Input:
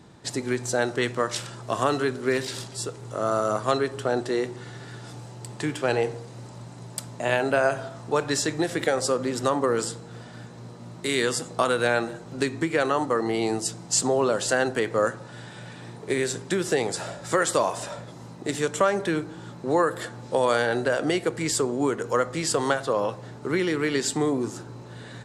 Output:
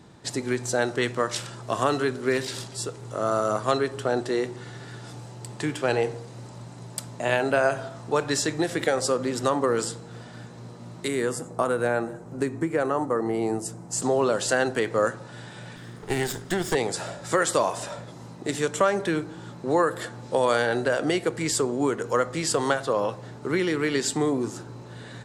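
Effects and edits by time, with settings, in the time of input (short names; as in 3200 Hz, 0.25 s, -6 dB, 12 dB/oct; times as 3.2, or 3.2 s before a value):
11.08–14.02 bell 3700 Hz -14.5 dB 1.7 oct
15.76–16.75 minimum comb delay 0.58 ms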